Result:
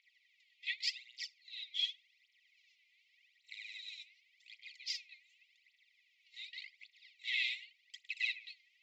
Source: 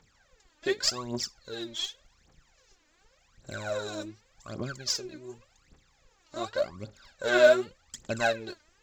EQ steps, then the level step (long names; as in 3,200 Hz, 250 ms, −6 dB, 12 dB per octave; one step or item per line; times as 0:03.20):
linear-phase brick-wall high-pass 1,900 Hz
high-frequency loss of the air 380 metres
+7.0 dB